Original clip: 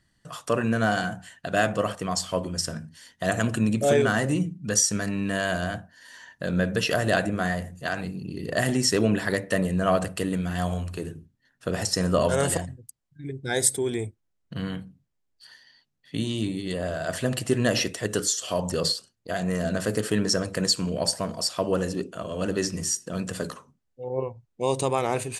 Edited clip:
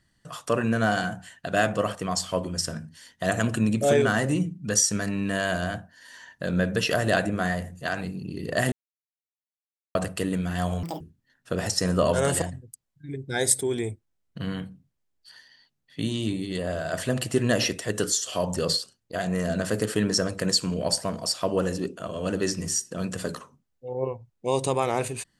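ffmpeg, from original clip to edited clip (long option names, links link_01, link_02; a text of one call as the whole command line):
ffmpeg -i in.wav -filter_complex "[0:a]asplit=5[link_01][link_02][link_03][link_04][link_05];[link_01]atrim=end=8.72,asetpts=PTS-STARTPTS,afade=type=out:start_time=8.716:duration=0.004:curve=hsin[link_06];[link_02]atrim=start=8.72:end=9.95,asetpts=PTS-STARTPTS,volume=0[link_07];[link_03]atrim=start=9.95:end=10.834,asetpts=PTS-STARTPTS,afade=type=in:duration=0.004:curve=hsin[link_08];[link_04]atrim=start=10.83:end=11.16,asetpts=PTS-STARTPTS,asetrate=82908,aresample=44100[link_09];[link_05]atrim=start=11.156[link_10];[link_06][link_07][link_08]concat=n=3:v=0:a=1[link_11];[link_11][link_09]acrossfade=duration=0.004:curve1=hsin:curve2=hsin[link_12];[link_12][link_10]acrossfade=duration=0.004:curve1=hsin:curve2=hsin" out.wav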